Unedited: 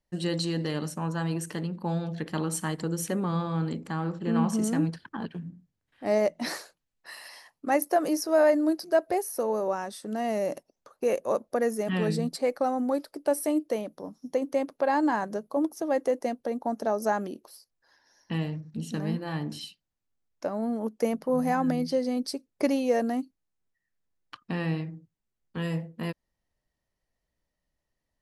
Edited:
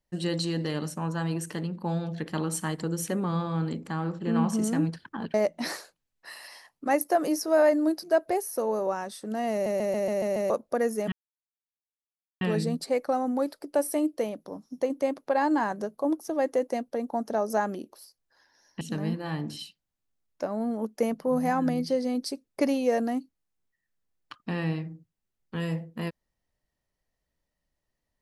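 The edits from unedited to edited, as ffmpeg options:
ffmpeg -i in.wav -filter_complex "[0:a]asplit=11[link_01][link_02][link_03][link_04][link_05][link_06][link_07][link_08][link_09][link_10][link_11];[link_01]atrim=end=5.342[link_12];[link_02]atrim=start=6.148:end=10.472[link_13];[link_03]atrim=start=10.328:end=10.472[link_14];[link_04]atrim=start=10.328:end=10.472[link_15];[link_05]atrim=start=10.328:end=10.472[link_16];[link_06]atrim=start=10.328:end=10.472[link_17];[link_07]atrim=start=10.328:end=10.472[link_18];[link_08]atrim=start=10.328:end=10.472[link_19];[link_09]atrim=start=11.308:end=11.93,asetpts=PTS-STARTPTS,afade=type=out:start_time=0.618:duration=0.004:curve=hsin,apad=pad_dur=1.29[link_20];[link_10]atrim=start=11.93:end=18.332,asetpts=PTS-STARTPTS,afade=type=in:duration=0.004:curve=hsin[link_21];[link_11]atrim=start=18.828[link_22];[link_12][link_13]acrossfade=duration=0.004:curve1=hsin:curve2=hsin[link_23];[link_23][link_14]acrossfade=duration=0.004:curve1=hsin:curve2=hsin[link_24];[link_24][link_15]acrossfade=duration=0.004:curve1=hsin:curve2=hsin[link_25];[link_25][link_16]acrossfade=duration=0.004:curve1=hsin:curve2=hsin[link_26];[link_26][link_17]acrossfade=duration=0.004:curve1=hsin:curve2=hsin[link_27];[link_27][link_18]acrossfade=duration=0.004:curve1=hsin:curve2=hsin[link_28];[link_28][link_19]acrossfade=duration=0.004:curve1=hsin:curve2=hsin[link_29];[link_20][link_21]concat=n=2:v=0:a=1[link_30];[link_29][link_30]acrossfade=duration=0.004:curve1=hsin:curve2=hsin[link_31];[link_31][link_22]acrossfade=duration=0.004:curve1=hsin:curve2=hsin" out.wav

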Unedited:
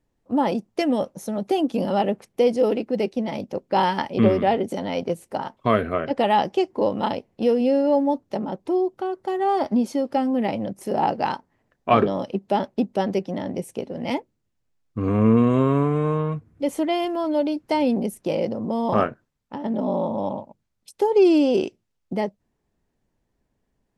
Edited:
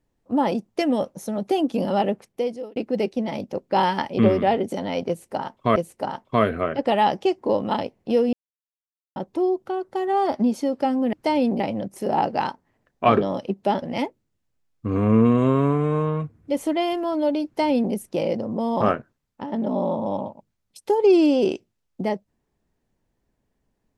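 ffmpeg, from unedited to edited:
ffmpeg -i in.wav -filter_complex "[0:a]asplit=8[link_01][link_02][link_03][link_04][link_05][link_06][link_07][link_08];[link_01]atrim=end=2.76,asetpts=PTS-STARTPTS,afade=type=out:start_time=2.08:duration=0.68[link_09];[link_02]atrim=start=2.76:end=5.762,asetpts=PTS-STARTPTS,afade=type=in:duration=0.004:curve=hsin[link_10];[link_03]atrim=start=5.078:end=7.65,asetpts=PTS-STARTPTS,afade=type=out:start_time=2.568:duration=0.004:curve=hsin[link_11];[link_04]atrim=start=7.65:end=8.48,asetpts=PTS-STARTPTS,volume=0[link_12];[link_05]atrim=start=8.48:end=10.452,asetpts=PTS-STARTPTS,afade=type=in:duration=0.004:curve=hsin[link_13];[link_06]atrim=start=17.578:end=18.052[link_14];[link_07]atrim=start=10.448:end=12.672[link_15];[link_08]atrim=start=13.938[link_16];[link_09][link_10]concat=n=2:v=0:a=1[link_17];[link_11][link_12][link_13]concat=n=3:v=0:a=1[link_18];[link_17][link_18]acrossfade=duration=0.004:curve1=hsin:curve2=hsin[link_19];[link_19][link_14]acrossfade=duration=0.004:curve1=hsin:curve2=hsin[link_20];[link_20][link_15]acrossfade=duration=0.004:curve1=hsin:curve2=hsin[link_21];[link_21][link_16]acrossfade=duration=0.004:curve1=hsin:curve2=hsin" out.wav

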